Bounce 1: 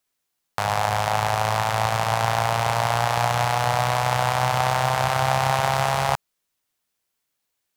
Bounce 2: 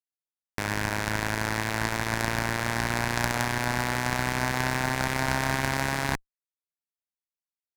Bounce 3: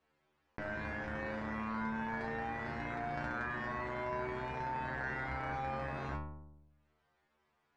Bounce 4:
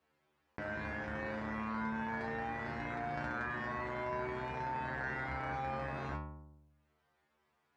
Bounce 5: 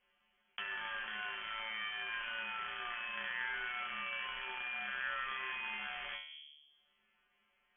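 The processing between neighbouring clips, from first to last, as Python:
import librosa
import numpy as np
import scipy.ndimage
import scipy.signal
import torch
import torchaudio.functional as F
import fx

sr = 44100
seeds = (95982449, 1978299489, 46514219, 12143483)

y1 = fx.cheby_harmonics(x, sr, harmonics=(3, 5, 6), levels_db=(-7, -22, -17), full_scale_db=-4.0)
y1 = fx.peak_eq(y1, sr, hz=3000.0, db=-6.0, octaves=0.37)
y2 = scipy.signal.sosfilt(scipy.signal.butter(2, 1600.0, 'lowpass', fs=sr, output='sos'), y1)
y2 = fx.stiff_resonator(y2, sr, f0_hz=73.0, decay_s=0.59, stiffness=0.002)
y2 = fx.env_flatten(y2, sr, amount_pct=50)
y3 = scipy.signal.sosfilt(scipy.signal.butter(2, 51.0, 'highpass', fs=sr, output='sos'), y2)
y4 = fx.freq_invert(y3, sr, carrier_hz=3300)
y4 = fx.env_lowpass_down(y4, sr, base_hz=2200.0, full_db=-38.0)
y4 = fx.high_shelf(y4, sr, hz=2300.0, db=-11.5)
y4 = y4 * 10.0 ** (6.5 / 20.0)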